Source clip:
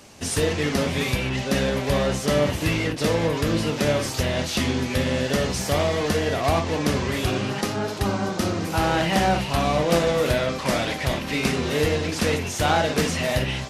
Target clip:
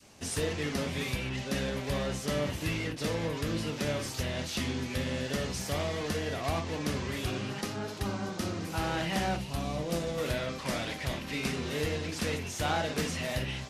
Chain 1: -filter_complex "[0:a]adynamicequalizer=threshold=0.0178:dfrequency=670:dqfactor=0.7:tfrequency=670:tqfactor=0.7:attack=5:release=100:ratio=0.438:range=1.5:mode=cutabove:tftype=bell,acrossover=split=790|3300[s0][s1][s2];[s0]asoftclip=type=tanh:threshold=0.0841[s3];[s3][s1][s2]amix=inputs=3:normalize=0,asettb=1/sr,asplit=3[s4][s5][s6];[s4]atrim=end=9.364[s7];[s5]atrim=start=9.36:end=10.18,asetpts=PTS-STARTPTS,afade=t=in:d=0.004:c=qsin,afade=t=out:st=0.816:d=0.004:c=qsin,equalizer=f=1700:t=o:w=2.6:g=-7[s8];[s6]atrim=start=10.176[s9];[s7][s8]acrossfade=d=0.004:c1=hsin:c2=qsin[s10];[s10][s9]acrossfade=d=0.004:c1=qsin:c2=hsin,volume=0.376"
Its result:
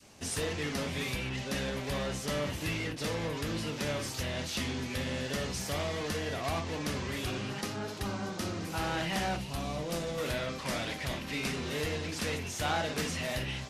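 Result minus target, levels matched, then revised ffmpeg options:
saturation: distortion +16 dB
-filter_complex "[0:a]adynamicequalizer=threshold=0.0178:dfrequency=670:dqfactor=0.7:tfrequency=670:tqfactor=0.7:attack=5:release=100:ratio=0.438:range=1.5:mode=cutabove:tftype=bell,acrossover=split=790|3300[s0][s1][s2];[s0]asoftclip=type=tanh:threshold=0.316[s3];[s3][s1][s2]amix=inputs=3:normalize=0,asettb=1/sr,asplit=3[s4][s5][s6];[s4]atrim=end=9.364[s7];[s5]atrim=start=9.36:end=10.18,asetpts=PTS-STARTPTS,afade=t=in:d=0.004:c=qsin,afade=t=out:st=0.816:d=0.004:c=qsin,equalizer=f=1700:t=o:w=2.6:g=-7[s8];[s6]atrim=start=10.176[s9];[s7][s8]acrossfade=d=0.004:c1=hsin:c2=qsin[s10];[s10][s9]acrossfade=d=0.004:c1=qsin:c2=hsin,volume=0.376"

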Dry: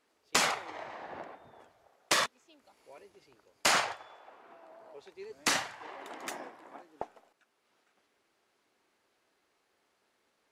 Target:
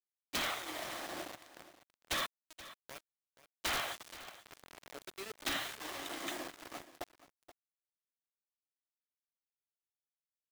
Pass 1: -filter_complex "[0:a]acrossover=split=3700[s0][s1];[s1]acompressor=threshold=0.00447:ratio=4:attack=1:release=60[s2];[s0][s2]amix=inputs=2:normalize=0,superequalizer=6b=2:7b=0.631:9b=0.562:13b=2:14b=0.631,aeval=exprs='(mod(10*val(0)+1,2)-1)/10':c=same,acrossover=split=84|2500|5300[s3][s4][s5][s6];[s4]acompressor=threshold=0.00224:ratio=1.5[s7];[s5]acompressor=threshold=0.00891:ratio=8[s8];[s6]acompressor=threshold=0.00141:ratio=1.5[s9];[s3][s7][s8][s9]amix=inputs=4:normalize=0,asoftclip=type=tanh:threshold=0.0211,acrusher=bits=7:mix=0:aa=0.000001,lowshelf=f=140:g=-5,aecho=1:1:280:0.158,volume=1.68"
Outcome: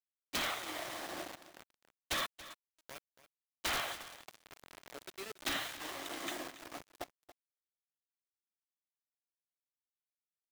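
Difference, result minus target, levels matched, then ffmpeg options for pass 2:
echo 197 ms early
-filter_complex "[0:a]acrossover=split=3700[s0][s1];[s1]acompressor=threshold=0.00447:ratio=4:attack=1:release=60[s2];[s0][s2]amix=inputs=2:normalize=0,superequalizer=6b=2:7b=0.631:9b=0.562:13b=2:14b=0.631,aeval=exprs='(mod(10*val(0)+1,2)-1)/10':c=same,acrossover=split=84|2500|5300[s3][s4][s5][s6];[s4]acompressor=threshold=0.00224:ratio=1.5[s7];[s5]acompressor=threshold=0.00891:ratio=8[s8];[s6]acompressor=threshold=0.00141:ratio=1.5[s9];[s3][s7][s8][s9]amix=inputs=4:normalize=0,asoftclip=type=tanh:threshold=0.0211,acrusher=bits=7:mix=0:aa=0.000001,lowshelf=f=140:g=-5,aecho=1:1:477:0.158,volume=1.68"

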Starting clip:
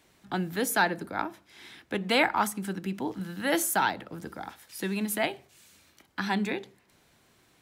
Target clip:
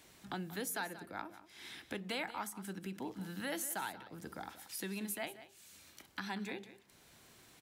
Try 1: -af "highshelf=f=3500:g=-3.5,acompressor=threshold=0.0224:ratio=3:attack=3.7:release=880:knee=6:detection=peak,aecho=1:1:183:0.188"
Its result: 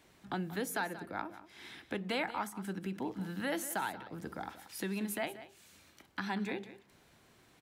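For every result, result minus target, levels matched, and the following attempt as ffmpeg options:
compression: peak gain reduction -5.5 dB; 8 kHz band -5.0 dB
-af "highshelf=f=3500:g=-3.5,acompressor=threshold=0.01:ratio=3:attack=3.7:release=880:knee=6:detection=peak,aecho=1:1:183:0.188"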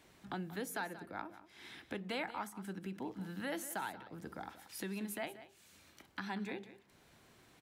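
8 kHz band -4.5 dB
-af "highshelf=f=3500:g=5.5,acompressor=threshold=0.01:ratio=3:attack=3.7:release=880:knee=6:detection=peak,aecho=1:1:183:0.188"

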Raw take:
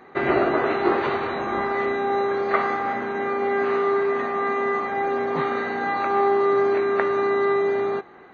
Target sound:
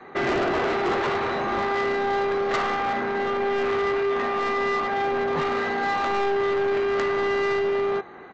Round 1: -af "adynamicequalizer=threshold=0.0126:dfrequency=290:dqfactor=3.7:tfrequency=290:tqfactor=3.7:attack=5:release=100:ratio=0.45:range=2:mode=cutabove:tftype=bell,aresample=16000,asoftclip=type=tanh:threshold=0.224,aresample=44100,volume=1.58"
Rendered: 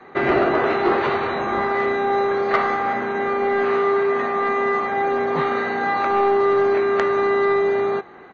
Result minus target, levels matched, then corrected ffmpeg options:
saturation: distortion -12 dB
-af "adynamicequalizer=threshold=0.0126:dfrequency=290:dqfactor=3.7:tfrequency=290:tqfactor=3.7:attack=5:release=100:ratio=0.45:range=2:mode=cutabove:tftype=bell,aresample=16000,asoftclip=type=tanh:threshold=0.0596,aresample=44100,volume=1.58"

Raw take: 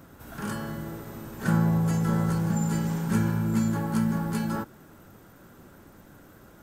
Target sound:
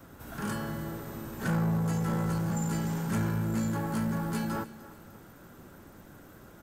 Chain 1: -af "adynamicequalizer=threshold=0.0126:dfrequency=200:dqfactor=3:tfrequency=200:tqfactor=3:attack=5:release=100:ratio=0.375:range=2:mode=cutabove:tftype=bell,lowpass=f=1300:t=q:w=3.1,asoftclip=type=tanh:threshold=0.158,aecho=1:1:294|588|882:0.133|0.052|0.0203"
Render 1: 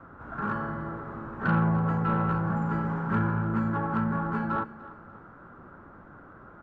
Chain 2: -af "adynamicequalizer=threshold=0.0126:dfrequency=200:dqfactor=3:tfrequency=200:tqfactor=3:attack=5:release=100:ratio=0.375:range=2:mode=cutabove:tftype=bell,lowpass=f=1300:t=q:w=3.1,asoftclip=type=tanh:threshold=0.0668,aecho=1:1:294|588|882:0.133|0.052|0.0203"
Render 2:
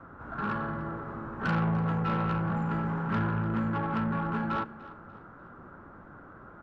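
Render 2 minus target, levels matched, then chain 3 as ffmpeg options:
1 kHz band +5.5 dB
-af "adynamicequalizer=threshold=0.0126:dfrequency=200:dqfactor=3:tfrequency=200:tqfactor=3:attack=5:release=100:ratio=0.375:range=2:mode=cutabove:tftype=bell,asoftclip=type=tanh:threshold=0.0668,aecho=1:1:294|588|882:0.133|0.052|0.0203"

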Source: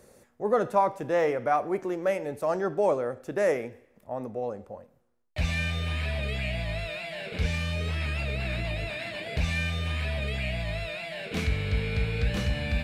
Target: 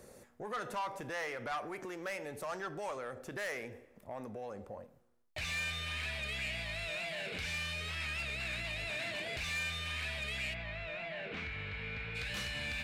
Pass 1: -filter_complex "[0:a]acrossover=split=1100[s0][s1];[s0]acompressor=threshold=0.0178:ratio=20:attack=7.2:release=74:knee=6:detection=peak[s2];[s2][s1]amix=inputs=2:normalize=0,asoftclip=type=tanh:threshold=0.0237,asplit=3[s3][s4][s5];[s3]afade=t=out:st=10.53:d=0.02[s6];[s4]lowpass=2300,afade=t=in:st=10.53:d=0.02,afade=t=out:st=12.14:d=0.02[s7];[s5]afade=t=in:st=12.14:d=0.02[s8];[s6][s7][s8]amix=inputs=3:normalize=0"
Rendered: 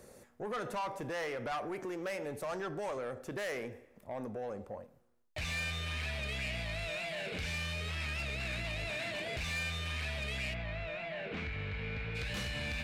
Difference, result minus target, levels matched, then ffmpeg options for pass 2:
compression: peak gain reduction -6 dB
-filter_complex "[0:a]acrossover=split=1100[s0][s1];[s0]acompressor=threshold=0.00841:ratio=20:attack=7.2:release=74:knee=6:detection=peak[s2];[s2][s1]amix=inputs=2:normalize=0,asoftclip=type=tanh:threshold=0.0237,asplit=3[s3][s4][s5];[s3]afade=t=out:st=10.53:d=0.02[s6];[s4]lowpass=2300,afade=t=in:st=10.53:d=0.02,afade=t=out:st=12.14:d=0.02[s7];[s5]afade=t=in:st=12.14:d=0.02[s8];[s6][s7][s8]amix=inputs=3:normalize=0"

